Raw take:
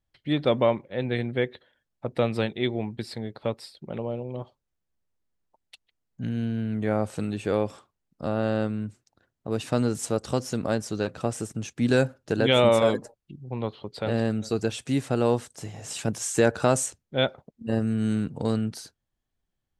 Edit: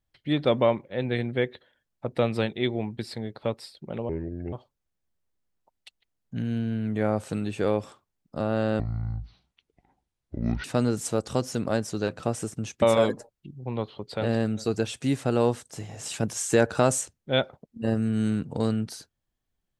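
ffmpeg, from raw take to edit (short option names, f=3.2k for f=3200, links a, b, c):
-filter_complex "[0:a]asplit=6[a][b][c][d][e][f];[a]atrim=end=4.094[g];[b]atrim=start=4.09:end=4.39,asetpts=PTS-STARTPTS,asetrate=30429,aresample=44100[h];[c]atrim=start=4.386:end=8.664[i];[d]atrim=start=8.66:end=9.62,asetpts=PTS-STARTPTS,asetrate=22932,aresample=44100,atrim=end_sample=81415,asetpts=PTS-STARTPTS[j];[e]atrim=start=9.616:end=11.802[k];[f]atrim=start=12.668[l];[g][h]acrossfade=d=0.004:c1=hsin:c2=hsin[m];[m][i]acrossfade=d=0.004:c1=hsin:c2=hsin[n];[n][j]acrossfade=d=0.004:c1=hsin:c2=hsin[o];[o][k]acrossfade=d=0.004:c1=hsin:c2=hsin[p];[p][l]acrossfade=d=0.004:c1=hsin:c2=hsin"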